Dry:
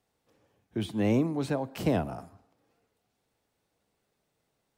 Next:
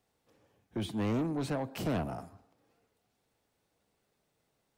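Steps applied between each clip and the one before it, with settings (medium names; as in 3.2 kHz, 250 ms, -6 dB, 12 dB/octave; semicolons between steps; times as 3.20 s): saturation -28 dBFS, distortion -10 dB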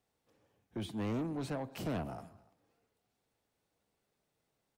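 delay 291 ms -23.5 dB; trim -4.5 dB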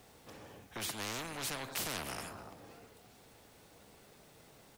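spectrum-flattening compressor 4:1; trim +9.5 dB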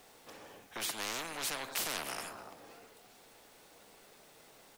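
peaking EQ 83 Hz -14 dB 2.7 oct; trim +2.5 dB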